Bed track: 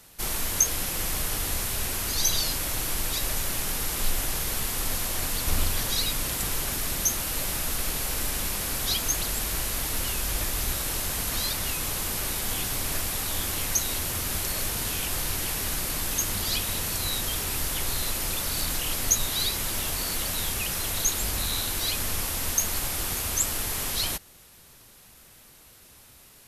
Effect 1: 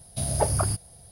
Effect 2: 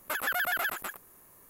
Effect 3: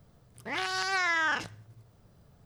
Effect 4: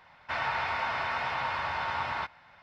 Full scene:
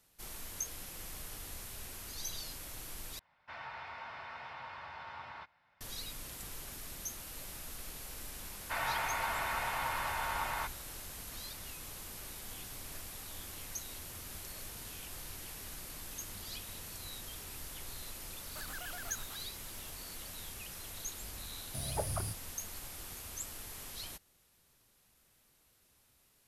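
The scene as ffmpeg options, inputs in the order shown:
-filter_complex "[4:a]asplit=2[s0][s1];[0:a]volume=0.141[s2];[2:a]asoftclip=type=tanh:threshold=0.0299[s3];[s2]asplit=2[s4][s5];[s4]atrim=end=3.194[s6];[s0]atrim=end=2.62,asetpts=PTS-STARTPTS,volume=0.178[s7];[s5]atrim=start=5.806[s8];[s1]atrim=end=2.62,asetpts=PTS-STARTPTS,volume=0.596,afade=t=in:d=0.004:c=hsin,afade=t=out:st=2.616:d=0.004:c=hsin,adelay=8410[s9];[s3]atrim=end=1.49,asetpts=PTS-STARTPTS,volume=0.237,afade=t=in:d=0.004:c=hsin,afade=t=out:st=1.486:d=0.004:c=hsin,adelay=18460[s10];[1:a]atrim=end=1.11,asetpts=PTS-STARTPTS,volume=0.237,afade=t=in:d=0.004:c=hsin,afade=t=out:st=1.106:d=0.004:c=hsin,adelay=21570[s11];[s6][s7]acrossfade=d=0.004:c1=hsin:c2=hsin[s12];[s12][s8]acrossfade=d=0.004:c1=hsin:c2=hsin[s13];[s13][s9][s10][s11]amix=inputs=4:normalize=0"

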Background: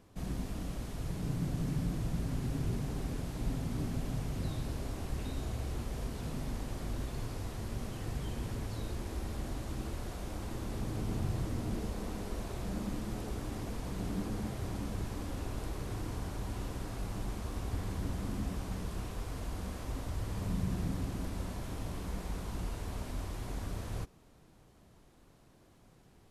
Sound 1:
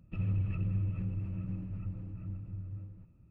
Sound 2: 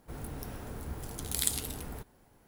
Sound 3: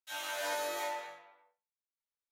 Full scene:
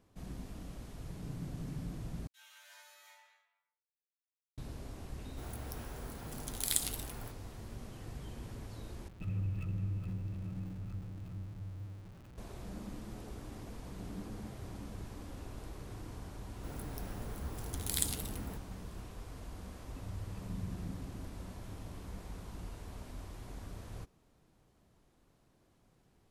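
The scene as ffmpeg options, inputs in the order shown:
-filter_complex "[2:a]asplit=2[s0][s1];[1:a]asplit=2[s2][s3];[0:a]volume=0.422[s4];[3:a]highpass=1400[s5];[s0]highpass=f=550:p=1[s6];[s2]aeval=exprs='val(0)+0.5*0.00596*sgn(val(0))':c=same[s7];[s4]asplit=3[s8][s9][s10];[s8]atrim=end=2.274[s11];[s5]atrim=end=2.31,asetpts=PTS-STARTPTS,volume=0.133[s12];[s9]atrim=start=4.576:end=9.084[s13];[s7]atrim=end=3.3,asetpts=PTS-STARTPTS,volume=0.562[s14];[s10]atrim=start=12.376[s15];[s6]atrim=end=2.47,asetpts=PTS-STARTPTS,volume=0.794,afade=t=in:d=0.004:c=hsin,afade=t=out:st=2.466:d=0.004:c=hsin,adelay=233289S[s16];[s1]atrim=end=2.47,asetpts=PTS-STARTPTS,volume=0.668,afade=t=in:d=0.004:c=hsin,afade=t=out:st=2.466:d=0.004:c=hsin,adelay=16550[s17];[s3]atrim=end=3.3,asetpts=PTS-STARTPTS,volume=0.158,afade=t=in:d=0.004:c=hsin,afade=t=out:st=3.296:d=0.004:c=hsin,adelay=19830[s18];[s11][s12]acrossfade=d=0.004:c1=hsin:c2=hsin[s19];[s19][s13]acrossfade=d=0.004:c1=hsin:c2=hsin[s20];[s20][s14]acrossfade=d=0.004:c1=hsin:c2=hsin[s21];[s21][s15]acrossfade=d=0.004:c1=hsin:c2=hsin[s22];[s22][s16][s17][s18]amix=inputs=4:normalize=0"

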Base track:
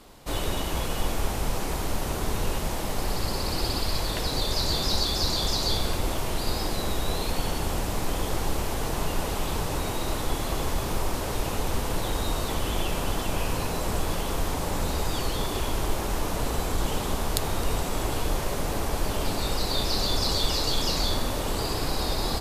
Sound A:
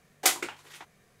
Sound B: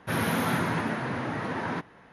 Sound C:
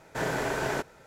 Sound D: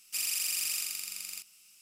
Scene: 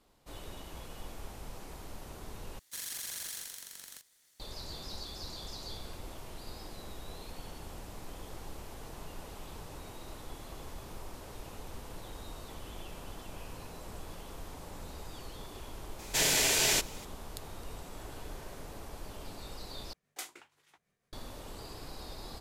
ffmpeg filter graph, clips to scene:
-filter_complex "[3:a]asplit=2[s0][s1];[0:a]volume=0.133[s2];[4:a]aeval=exprs='val(0)*sgn(sin(2*PI*780*n/s))':c=same[s3];[s0]aexciter=amount=6.4:drive=7.7:freq=2200[s4];[s1]acompressor=threshold=0.00891:ratio=6:attack=3.2:release=140:knee=1:detection=peak[s5];[1:a]tremolo=f=6.2:d=0.43[s6];[s2]asplit=3[s7][s8][s9];[s7]atrim=end=2.594[s10];[s3]atrim=end=1.81,asetpts=PTS-STARTPTS,volume=0.376[s11];[s8]atrim=start=4.396:end=19.934[s12];[s6]atrim=end=1.2,asetpts=PTS-STARTPTS,volume=0.15[s13];[s9]atrim=start=21.126[s14];[s4]atrim=end=1.06,asetpts=PTS-STARTPTS,volume=0.531,afade=t=in:d=0.004:c=hsin,afade=t=out:st=1.056:d=0.004:c=hsin,adelay=15990[s15];[s5]atrim=end=1.06,asetpts=PTS-STARTPTS,volume=0.224,afade=t=in:d=0.004:c=hsin,afade=t=out:st=1.056:d=0.004:c=hsin,adelay=17840[s16];[s10][s11]acrossfade=d=0.004:c1=hsin:c2=hsin[s17];[s17][s12]acrossfade=d=0.004:c1=hsin:c2=hsin[s18];[s18][s13]acrossfade=d=0.004:c1=hsin:c2=hsin[s19];[s19][s14]acrossfade=d=0.004:c1=hsin:c2=hsin[s20];[s20][s15][s16]amix=inputs=3:normalize=0"

